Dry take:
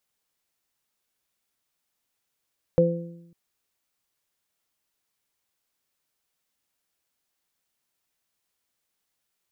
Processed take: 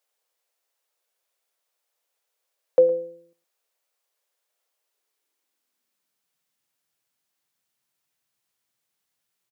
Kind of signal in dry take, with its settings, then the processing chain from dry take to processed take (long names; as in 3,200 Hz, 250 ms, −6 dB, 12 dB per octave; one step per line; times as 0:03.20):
harmonic partials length 0.55 s, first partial 170 Hz, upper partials −6.5/5.5 dB, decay 0.95 s, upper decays 0.87/0.55 s, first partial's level −19 dB
low-shelf EQ 280 Hz −6 dB
high-pass filter sweep 510 Hz → 120 Hz, 0:04.77–0:06.57
single-tap delay 112 ms −18.5 dB